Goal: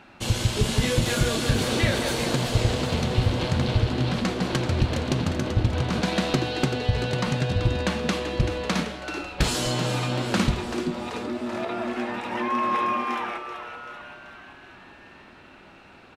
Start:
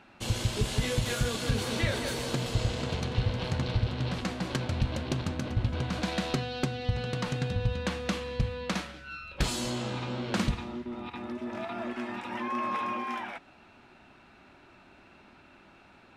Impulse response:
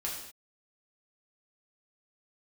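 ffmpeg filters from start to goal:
-filter_complex "[0:a]asettb=1/sr,asplit=3[link_01][link_02][link_03];[link_01]atrim=end=9.544[link_04];[link_02]atrim=start=9.54:end=10.23,asetpts=PTS-STARTPTS,afade=type=in:duration=0.004:curve=qsin,afade=type=out:start_time=0.686:duration=0.004:curve=qsin,aecho=1:1:6.6:0.75,atrim=end_sample=30429[link_05];[link_03]atrim=start=10.226[link_06];[link_04][link_05]acrossfade=duration=0.004:curve1=hsin:curve2=qsin[link_07];[link_07][link_06]acrossfade=duration=0.004:curve1=qsin:curve2=hsin,asplit=8[link_08][link_09][link_10][link_11][link_12][link_13][link_14][link_15];[link_09]adelay=384,afreqshift=120,volume=-10dB[link_16];[link_10]adelay=768,afreqshift=240,volume=-14.7dB[link_17];[link_11]adelay=1152,afreqshift=360,volume=-19.5dB[link_18];[link_12]adelay=1536,afreqshift=480,volume=-24.2dB[link_19];[link_13]adelay=1920,afreqshift=600,volume=-28.9dB[link_20];[link_14]adelay=2304,afreqshift=720,volume=-33.7dB[link_21];[link_15]adelay=2688,afreqshift=840,volume=-38.4dB[link_22];[link_08][link_16][link_17][link_18][link_19][link_20][link_21][link_22]amix=inputs=8:normalize=0,asplit=2[link_23][link_24];[1:a]atrim=start_sample=2205[link_25];[link_24][link_25]afir=irnorm=-1:irlink=0,volume=-13.5dB[link_26];[link_23][link_26]amix=inputs=2:normalize=0,volume=4.5dB"

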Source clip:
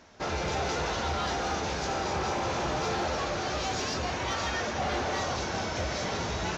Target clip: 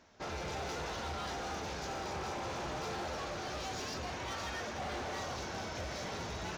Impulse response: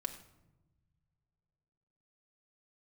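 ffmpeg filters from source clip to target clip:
-af "asoftclip=type=hard:threshold=-28dB,volume=-8dB"

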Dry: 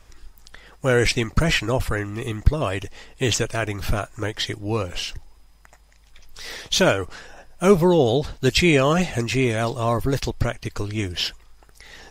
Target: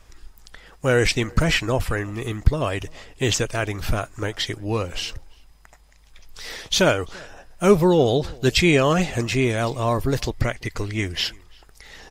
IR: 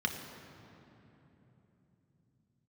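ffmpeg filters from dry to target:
-filter_complex "[0:a]asettb=1/sr,asplit=3[link_01][link_02][link_03];[link_01]atrim=end=10.334[link_04];[link_02]atrim=start=10.33:end=11.25,asetpts=PTS-STARTPTS,afade=type=in:duration=0.004:curve=qsin,afade=type=out:start_time=0.916:duration=0.004:curve=qsin,equalizer=frequency=2000:width=7.2:gain=10.5[link_05];[link_03]atrim=start=11.246[link_06];[link_04][link_05]acrossfade=duration=0.004:curve1=hsin:curve2=qsin[link_07];[link_07][link_06]acrossfade=duration=0.004:curve1=qsin:curve2=hsin,asplit=2[link_08][link_09];[link_09]adelay=338.2,volume=-26dB,highshelf=frequency=4000:gain=-7.61[link_10];[link_08][link_10]amix=inputs=2:normalize=0"

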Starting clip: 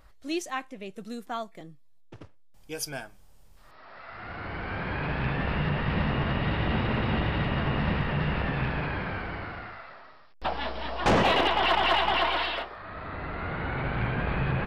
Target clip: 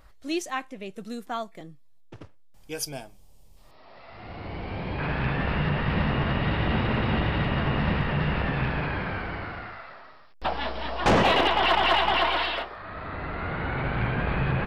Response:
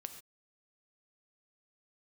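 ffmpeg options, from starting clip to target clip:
-filter_complex "[0:a]asettb=1/sr,asplit=3[link_01][link_02][link_03];[link_01]atrim=end=2.854[link_04];[link_02]atrim=start=2.85:end=4.99,asetpts=PTS-STARTPTS,afade=type=in:duration=0.004:curve=qsin,afade=type=out:start_time=2.136:duration=0.004:curve=qsin,equalizer=frequency=1500:width=1.9:gain=-13.5[link_05];[link_03]atrim=start=4.986[link_06];[link_04][link_05]acrossfade=duration=0.004:curve1=hsin:curve2=qsin[link_07];[link_07][link_06]acrossfade=duration=0.004:curve1=qsin:curve2=hsin,volume=2dB"

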